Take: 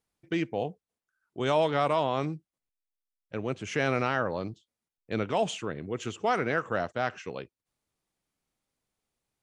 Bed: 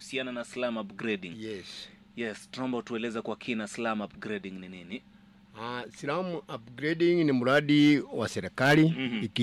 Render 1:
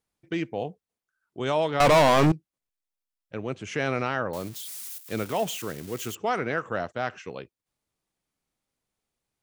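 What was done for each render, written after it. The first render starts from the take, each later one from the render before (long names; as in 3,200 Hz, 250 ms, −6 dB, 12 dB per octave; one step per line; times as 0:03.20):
0:01.80–0:02.32: leveller curve on the samples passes 5
0:04.33–0:06.15: spike at every zero crossing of −30 dBFS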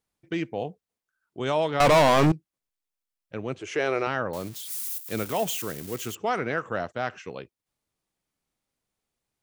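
0:03.59–0:04.07: low shelf with overshoot 280 Hz −7.5 dB, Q 3
0:04.70–0:05.96: high-shelf EQ 7,900 Hz +7.5 dB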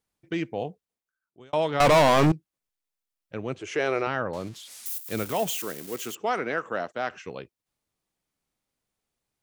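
0:00.68–0:01.53: fade out
0:04.01–0:04.86: high-frequency loss of the air 64 metres
0:05.51–0:07.11: high-pass filter 220 Hz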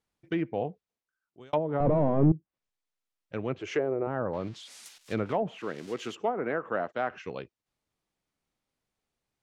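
treble cut that deepens with the level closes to 420 Hz, closed at −20.5 dBFS
high-shelf EQ 8,400 Hz −11 dB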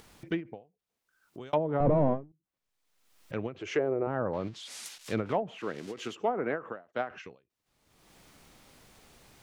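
upward compression, threshold −35 dBFS
every ending faded ahead of time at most 200 dB per second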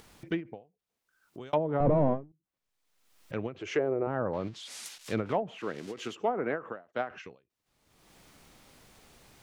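no processing that can be heard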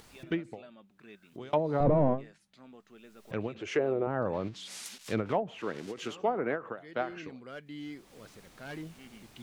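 mix in bed −21 dB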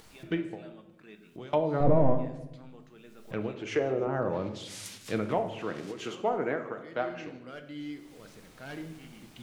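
delay with a high-pass on its return 152 ms, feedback 69%, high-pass 4,900 Hz, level −20 dB
rectangular room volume 370 cubic metres, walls mixed, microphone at 0.56 metres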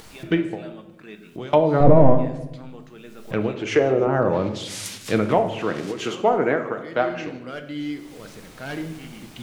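level +10 dB
brickwall limiter −2 dBFS, peak gain reduction 1 dB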